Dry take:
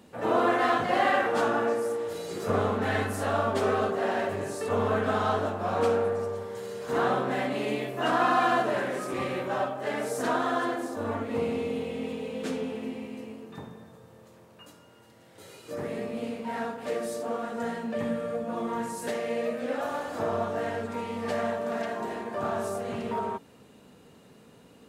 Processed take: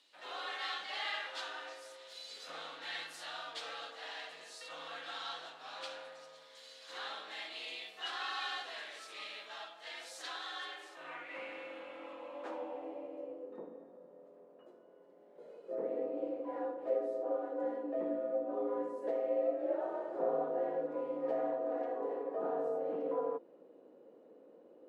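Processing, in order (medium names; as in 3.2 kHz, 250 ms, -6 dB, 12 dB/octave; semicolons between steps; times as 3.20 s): band-pass sweep 3.8 kHz -> 400 Hz, 10.50–13.55 s; frequency shift +62 Hz; trim +1 dB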